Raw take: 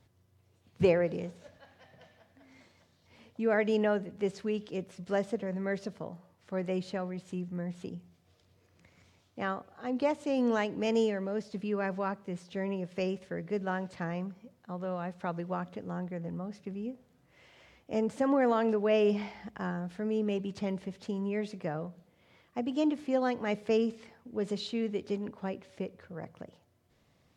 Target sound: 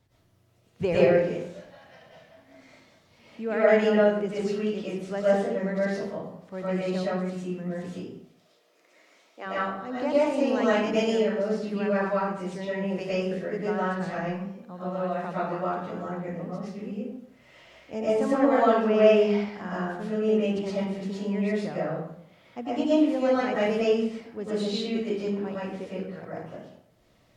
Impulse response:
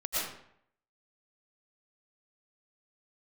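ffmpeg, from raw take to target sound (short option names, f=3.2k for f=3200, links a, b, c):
-filter_complex "[0:a]asplit=3[a][b][c];[a]afade=t=out:st=7.94:d=0.02[d];[b]highpass=f=310:w=0.5412,highpass=f=310:w=1.3066,afade=t=in:st=7.94:d=0.02,afade=t=out:st=9.45:d=0.02[e];[c]afade=t=in:st=9.45:d=0.02[f];[d][e][f]amix=inputs=3:normalize=0[g];[1:a]atrim=start_sample=2205[h];[g][h]afir=irnorm=-1:irlink=0"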